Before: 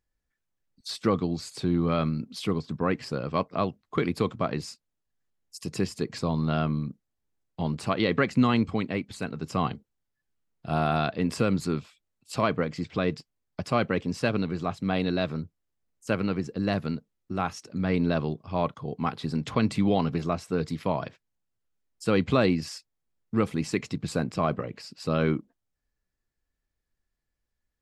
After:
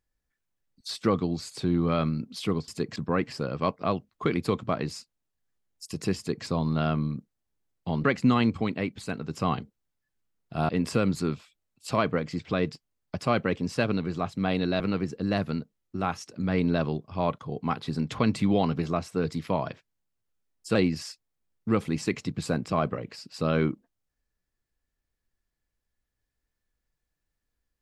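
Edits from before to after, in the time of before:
5.89–6.17 copy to 2.68
7.76–8.17 cut
10.82–11.14 cut
15.25–16.16 cut
22.11–22.41 cut

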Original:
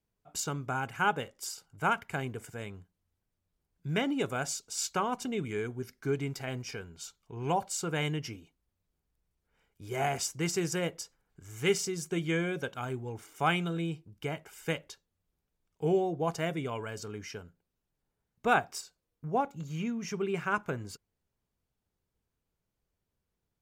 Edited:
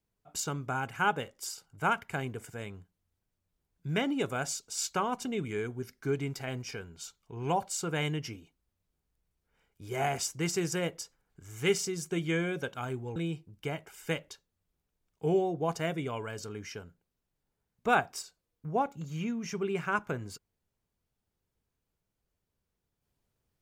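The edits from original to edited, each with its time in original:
13.16–13.75 cut

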